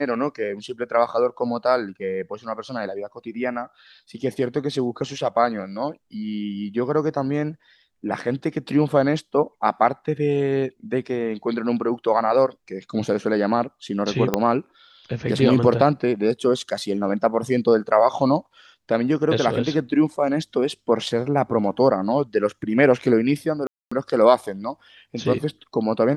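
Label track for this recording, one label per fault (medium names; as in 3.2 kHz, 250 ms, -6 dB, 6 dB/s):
14.340000	14.340000	pop -5 dBFS
23.670000	23.910000	dropout 245 ms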